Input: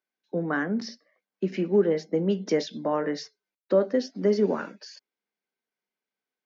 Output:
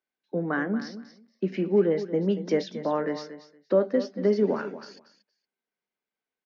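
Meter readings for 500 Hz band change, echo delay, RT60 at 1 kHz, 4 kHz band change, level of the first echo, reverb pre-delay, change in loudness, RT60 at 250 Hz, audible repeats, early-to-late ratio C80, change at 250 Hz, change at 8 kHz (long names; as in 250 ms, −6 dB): 0.0 dB, 233 ms, no reverb audible, −4.0 dB, −13.0 dB, no reverb audible, 0.0 dB, no reverb audible, 2, no reverb audible, 0.0 dB, can't be measured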